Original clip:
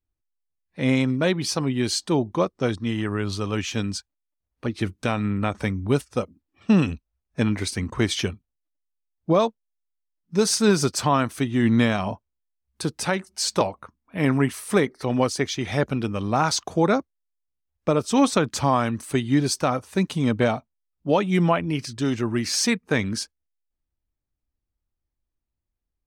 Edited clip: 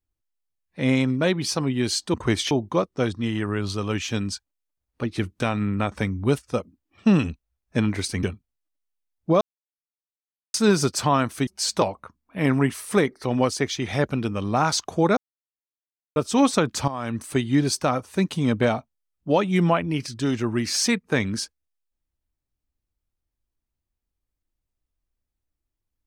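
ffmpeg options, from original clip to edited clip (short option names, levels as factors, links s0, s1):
-filter_complex "[0:a]asplit=10[s0][s1][s2][s3][s4][s5][s6][s7][s8][s9];[s0]atrim=end=2.142[s10];[s1]atrim=start=7.858:end=8.232[s11];[s2]atrim=start=2.138:end=7.862[s12];[s3]atrim=start=8.228:end=9.41,asetpts=PTS-STARTPTS,afade=t=out:st=1.178:d=0.004:c=hsin[s13];[s4]atrim=start=9.41:end=10.54,asetpts=PTS-STARTPTS,volume=0[s14];[s5]atrim=start=10.54:end=11.472,asetpts=PTS-STARTPTS,afade=t=in:d=0.004:c=hsin[s15];[s6]atrim=start=13.258:end=16.96,asetpts=PTS-STARTPTS,afade=t=out:st=3.698:d=0.004:c=hsin[s16];[s7]atrim=start=16.96:end=17.95,asetpts=PTS-STARTPTS,volume=0[s17];[s8]atrim=start=17.95:end=18.67,asetpts=PTS-STARTPTS,afade=t=in:d=0.004:c=hsin,afade=t=out:st=0.716:d=0.004:c=hsin:silence=0.211349[s18];[s9]atrim=start=18.67,asetpts=PTS-STARTPTS,afade=t=in:d=0.28:c=qua:silence=0.211349[s19];[s10][s11]acrossfade=d=0.004:c1=hsin:c2=hsin[s20];[s20][s12]acrossfade=d=0.004:c1=hsin:c2=hsin[s21];[s13][s14][s15]concat=n=3:v=0:a=1[s22];[s21][s22]acrossfade=d=0.004:c1=hsin:c2=hsin[s23];[s16][s17][s18][s19]concat=n=4:v=0:a=1[s24];[s23][s24]acrossfade=d=0.004:c1=hsin:c2=hsin"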